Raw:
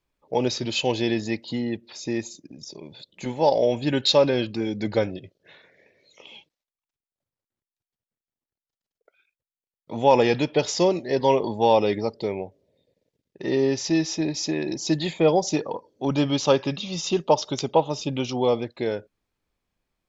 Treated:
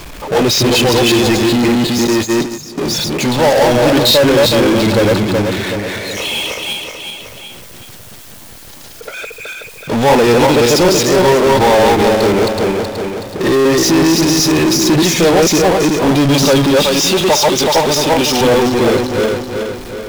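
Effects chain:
feedback delay that plays each chunk backwards 187 ms, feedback 41%, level −0.5 dB
0:02.07–0:02.78: noise gate −27 dBFS, range −40 dB
0:16.83–0:18.41: high-pass filter 450 Hz 6 dB per octave
power curve on the samples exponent 0.35

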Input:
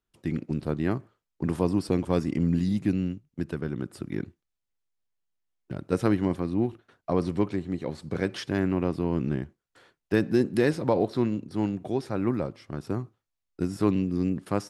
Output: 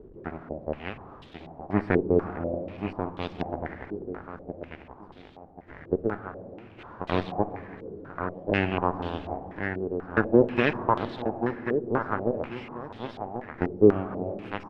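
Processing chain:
converter with a step at zero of −29 dBFS
shaped tremolo saw down 0.59 Hz, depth 80%
harmonic generator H 7 −15 dB, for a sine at −9.5 dBFS
repeating echo 1,087 ms, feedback 33%, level −7 dB
on a send at −11 dB: convolution reverb RT60 3.2 s, pre-delay 5 ms
on the sum: low-pass on a step sequencer 4.1 Hz 420–3,500 Hz

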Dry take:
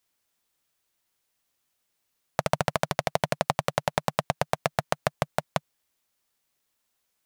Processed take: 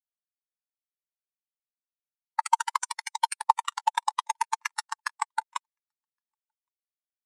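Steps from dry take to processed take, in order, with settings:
one scale factor per block 5 bits
high-shelf EQ 2,100 Hz +12 dB
brickwall limiter −3 dBFS, peak gain reduction 8.5 dB
dynamic equaliser 8,900 Hz, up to +6 dB, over −50 dBFS, Q 0.73
elliptic high-pass filter 860 Hz, stop band 40 dB
repeating echo 1,116 ms, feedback 29%, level −16 dB
every bin expanded away from the loudest bin 4 to 1

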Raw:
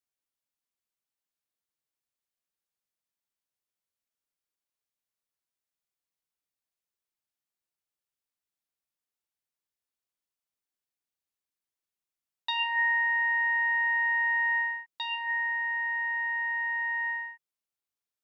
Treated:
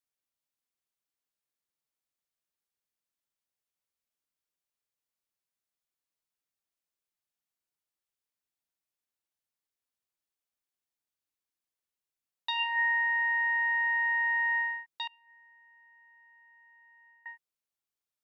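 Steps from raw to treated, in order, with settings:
0:15.07–0:17.26: gate with flip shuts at −30 dBFS, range −28 dB
level −1.5 dB

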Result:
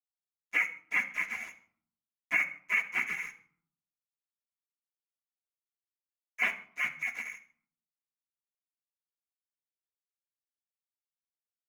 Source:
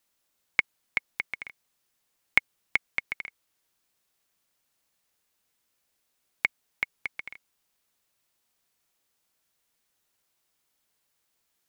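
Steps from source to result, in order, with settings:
random phases in long frames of 100 ms
high-pass filter 110 Hz 24 dB per octave
gate on every frequency bin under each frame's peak −25 dB strong
high-shelf EQ 2,400 Hz −7 dB
brickwall limiter −23 dBFS, peak gain reduction 9 dB
dead-zone distortion −53.5 dBFS
convolution reverb RT60 0.55 s, pre-delay 3 ms, DRR 1 dB
level +6 dB

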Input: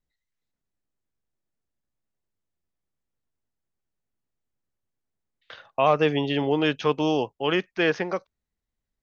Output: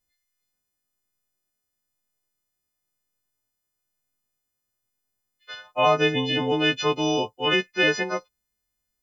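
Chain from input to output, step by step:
every partial snapped to a pitch grid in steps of 3 semitones

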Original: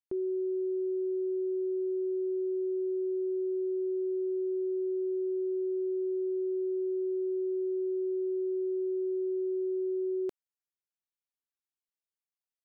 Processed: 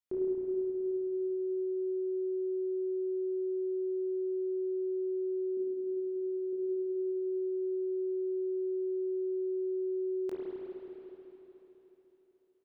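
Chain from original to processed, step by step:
0:05.57–0:06.53: parametric band 260 Hz −11 dB 0.34 octaves
double-tracking delay 22 ms −5 dB
spring reverb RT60 3.8 s, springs 33/53 ms, chirp 20 ms, DRR −5.5 dB
level −2 dB

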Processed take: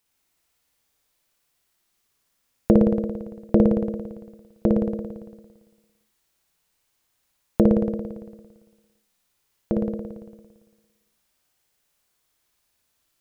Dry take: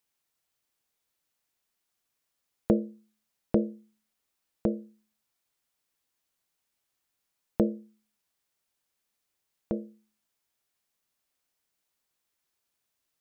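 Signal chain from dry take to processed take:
low-shelf EQ 95 Hz +6 dB
on a send: flutter between parallel walls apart 9.7 metres, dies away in 1.4 s
on the sum: level +5.5 dB

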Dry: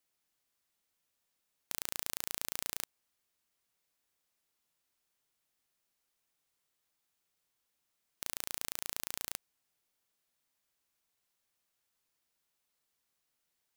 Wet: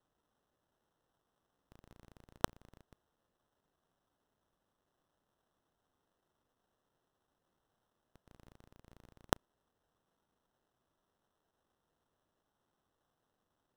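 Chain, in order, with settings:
reversed piece by piece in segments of 113 ms
low-shelf EQ 200 Hz +6 dB
sample-rate reduction 2,300 Hz, jitter 0%
level −1 dB

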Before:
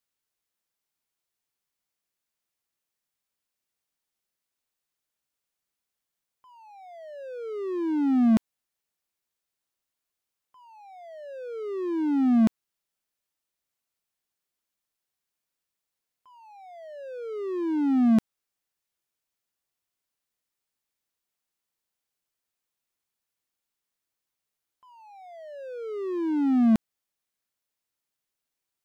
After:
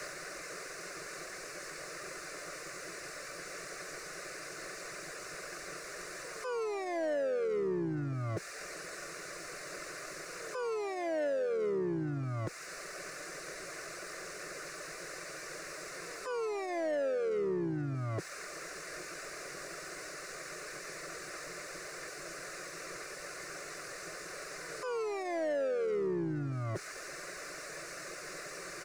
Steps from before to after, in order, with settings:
converter with a step at zero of −29 dBFS
reverb reduction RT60 0.71 s
low shelf with overshoot 250 Hz −12 dB, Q 3
comb filter 3.4 ms, depth 36%
pitch-shifted copies added −12 semitones −2 dB, +3 semitones −11 dB
downward compressor 12 to 1, threshold −25 dBFS, peak gain reduction 12 dB
phaser with its sweep stopped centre 880 Hz, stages 6
leveller curve on the samples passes 1
soft clipping −24 dBFS, distortion −22 dB
high-frequency loss of the air 100 metres
echo ahead of the sound 239 ms −18 dB
level −2.5 dB

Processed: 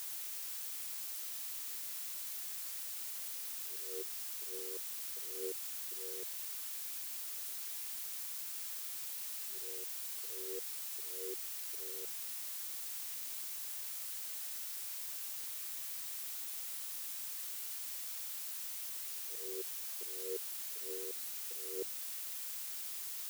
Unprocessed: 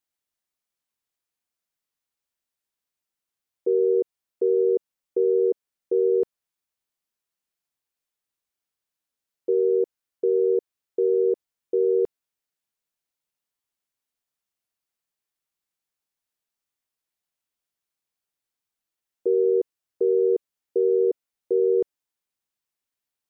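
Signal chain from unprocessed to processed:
noise gate −17 dBFS, range −32 dB
volume swells 536 ms
phase shifter 1.1 Hz
background noise blue −39 dBFS
level −4 dB

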